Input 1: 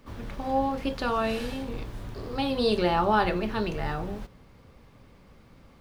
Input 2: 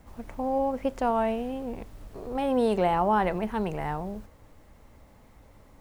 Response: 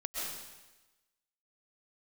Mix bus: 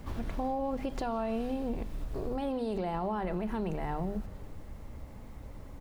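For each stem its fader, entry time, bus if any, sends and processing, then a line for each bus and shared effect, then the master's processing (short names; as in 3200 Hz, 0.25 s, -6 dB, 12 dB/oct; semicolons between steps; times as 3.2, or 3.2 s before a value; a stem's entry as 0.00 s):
+0.5 dB, 0.00 s, send -18 dB, compressor, threshold -29 dBFS, peak gain reduction 10.5 dB; auto duck -16 dB, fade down 1.90 s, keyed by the second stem
+1.5 dB, 0.3 ms, no send, limiter -24.5 dBFS, peak gain reduction 11 dB; low shelf 330 Hz +9.5 dB; notches 50/100/150/200/250 Hz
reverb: on, RT60 1.1 s, pre-delay 90 ms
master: compressor 2.5:1, threshold -32 dBFS, peak gain reduction 6.5 dB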